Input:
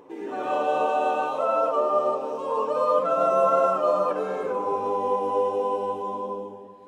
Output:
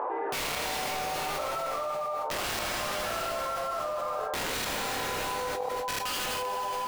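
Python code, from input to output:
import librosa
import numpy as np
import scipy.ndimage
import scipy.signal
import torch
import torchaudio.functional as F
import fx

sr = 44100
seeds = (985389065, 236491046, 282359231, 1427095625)

p1 = scipy.signal.sosfilt(scipy.signal.cheby1(2, 1.0, [660.0, 1400.0], 'bandpass', fs=sr, output='sos'), x)
p2 = fx.rider(p1, sr, range_db=3, speed_s=0.5)
p3 = p1 + (p2 * librosa.db_to_amplitude(-1.5))
p4 = fx.gate_flip(p3, sr, shuts_db=-16.0, range_db=-35)
p5 = (np.mod(10.0 ** (25.0 / 20.0) * p4 + 1.0, 2.0) - 1.0) / 10.0 ** (25.0 / 20.0)
p6 = fx.room_early_taps(p5, sr, ms=(20, 48, 78), db=(-5.0, -5.0, -4.5))
p7 = fx.rev_plate(p6, sr, seeds[0], rt60_s=3.7, hf_ratio=0.85, predelay_ms=0, drr_db=10.5)
p8 = fx.env_flatten(p7, sr, amount_pct=100)
y = p8 * librosa.db_to_amplitude(-6.5)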